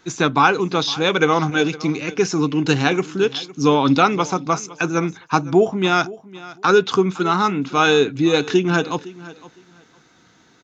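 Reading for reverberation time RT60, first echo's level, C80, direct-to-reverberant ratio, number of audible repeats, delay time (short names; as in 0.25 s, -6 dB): none, -19.0 dB, none, none, 2, 0.51 s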